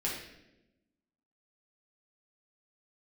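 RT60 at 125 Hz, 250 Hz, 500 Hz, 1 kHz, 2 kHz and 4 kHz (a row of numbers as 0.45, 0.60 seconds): 1.3, 1.4, 1.1, 0.75, 0.85, 0.75 seconds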